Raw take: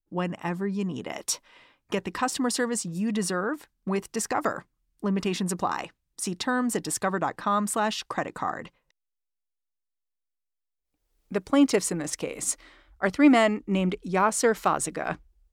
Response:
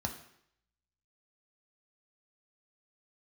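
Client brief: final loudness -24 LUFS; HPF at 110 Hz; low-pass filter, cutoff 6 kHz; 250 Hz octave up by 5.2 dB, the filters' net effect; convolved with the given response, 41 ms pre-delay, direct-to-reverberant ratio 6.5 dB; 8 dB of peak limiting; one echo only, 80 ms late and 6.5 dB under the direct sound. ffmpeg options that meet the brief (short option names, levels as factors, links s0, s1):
-filter_complex "[0:a]highpass=110,lowpass=6000,equalizer=f=250:t=o:g=6.5,alimiter=limit=0.251:level=0:latency=1,aecho=1:1:80:0.473,asplit=2[s0][s1];[1:a]atrim=start_sample=2205,adelay=41[s2];[s1][s2]afir=irnorm=-1:irlink=0,volume=0.355[s3];[s0][s3]amix=inputs=2:normalize=0,volume=0.891"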